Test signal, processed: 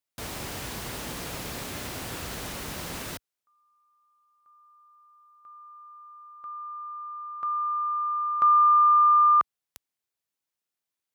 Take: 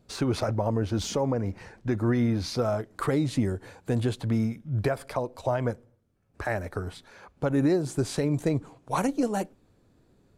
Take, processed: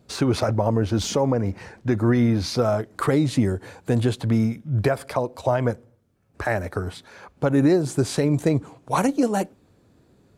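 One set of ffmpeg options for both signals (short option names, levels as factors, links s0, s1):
-af "highpass=55,volume=1.88"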